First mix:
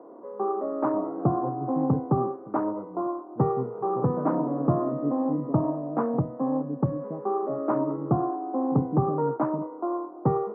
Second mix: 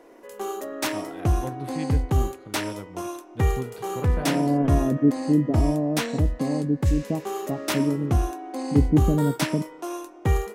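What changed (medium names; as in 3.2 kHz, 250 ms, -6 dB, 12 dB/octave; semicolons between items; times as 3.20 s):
second voice +9.5 dB; background -4.5 dB; master: remove Chebyshev band-pass 130–1200 Hz, order 4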